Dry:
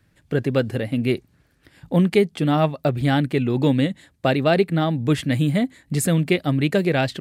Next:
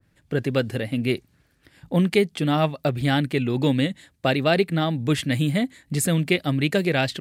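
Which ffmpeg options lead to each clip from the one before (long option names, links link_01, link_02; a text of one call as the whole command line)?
ffmpeg -i in.wav -af "adynamicequalizer=threshold=0.0224:dfrequency=1600:dqfactor=0.7:tfrequency=1600:tqfactor=0.7:attack=5:release=100:ratio=0.375:range=2.5:mode=boostabove:tftype=highshelf,volume=-2.5dB" out.wav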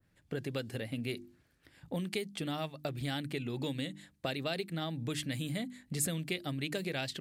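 ffmpeg -i in.wav -filter_complex "[0:a]bandreject=frequency=50:width_type=h:width=6,bandreject=frequency=100:width_type=h:width=6,bandreject=frequency=150:width_type=h:width=6,bandreject=frequency=200:width_type=h:width=6,bandreject=frequency=250:width_type=h:width=6,bandreject=frequency=300:width_type=h:width=6,bandreject=frequency=350:width_type=h:width=6,acrossover=split=3500[link_01][link_02];[link_01]acompressor=threshold=-27dB:ratio=6[link_03];[link_03][link_02]amix=inputs=2:normalize=0,volume=-7dB" out.wav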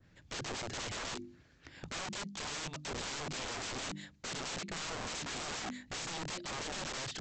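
ffmpeg -i in.wav -af "alimiter=level_in=4.5dB:limit=-24dB:level=0:latency=1:release=448,volume=-4.5dB,aresample=16000,aeval=exprs='(mod(150*val(0)+1,2)-1)/150':channel_layout=same,aresample=44100,volume=8dB" out.wav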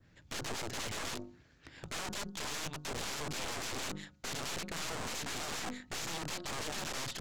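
ffmpeg -i in.wav -af "bandreject=frequency=181.9:width_type=h:width=4,bandreject=frequency=363.8:width_type=h:width=4,bandreject=frequency=545.7:width_type=h:width=4,bandreject=frequency=727.6:width_type=h:width=4,bandreject=frequency=909.5:width_type=h:width=4,bandreject=frequency=1091.4:width_type=h:width=4,bandreject=frequency=1273.3:width_type=h:width=4,bandreject=frequency=1455.2:width_type=h:width=4,aeval=exprs='0.0316*(cos(1*acos(clip(val(0)/0.0316,-1,1)))-cos(1*PI/2))+0.00794*(cos(4*acos(clip(val(0)/0.0316,-1,1)))-cos(4*PI/2))':channel_layout=same" out.wav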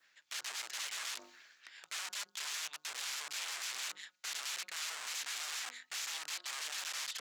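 ffmpeg -i in.wav -af "highpass=1500,areverse,acompressor=mode=upward:threshold=-46dB:ratio=2.5,areverse,volume=1dB" out.wav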